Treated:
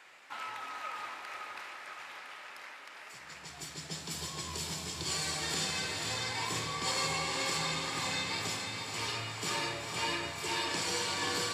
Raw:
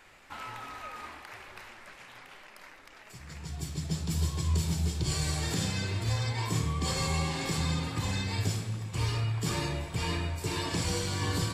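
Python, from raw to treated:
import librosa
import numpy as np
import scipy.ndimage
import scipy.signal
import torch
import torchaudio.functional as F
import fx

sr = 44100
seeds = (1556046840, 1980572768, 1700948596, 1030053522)

y = fx.weighting(x, sr, curve='A')
y = fx.echo_diffused(y, sr, ms=487, feedback_pct=58, wet_db=-5.0)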